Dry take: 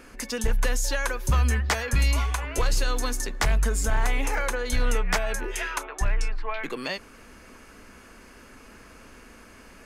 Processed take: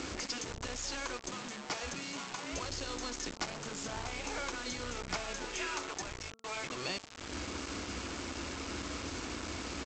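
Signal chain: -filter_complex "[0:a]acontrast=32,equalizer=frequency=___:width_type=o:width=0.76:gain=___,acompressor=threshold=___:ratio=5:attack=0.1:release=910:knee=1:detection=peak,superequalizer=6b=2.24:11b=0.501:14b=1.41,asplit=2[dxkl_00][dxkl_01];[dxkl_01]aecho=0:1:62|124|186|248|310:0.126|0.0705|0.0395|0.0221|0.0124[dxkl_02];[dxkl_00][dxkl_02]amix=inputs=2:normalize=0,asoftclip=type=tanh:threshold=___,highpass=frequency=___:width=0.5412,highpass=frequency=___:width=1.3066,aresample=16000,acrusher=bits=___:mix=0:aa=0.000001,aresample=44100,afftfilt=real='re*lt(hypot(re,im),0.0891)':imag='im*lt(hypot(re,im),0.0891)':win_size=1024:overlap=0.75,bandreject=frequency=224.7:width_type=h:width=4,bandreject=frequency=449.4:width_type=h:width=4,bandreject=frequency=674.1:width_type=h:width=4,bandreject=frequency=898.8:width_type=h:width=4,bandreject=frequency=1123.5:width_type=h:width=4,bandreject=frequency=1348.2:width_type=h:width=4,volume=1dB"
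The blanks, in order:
78, 9, -28dB, -24.5dB, 53, 53, 6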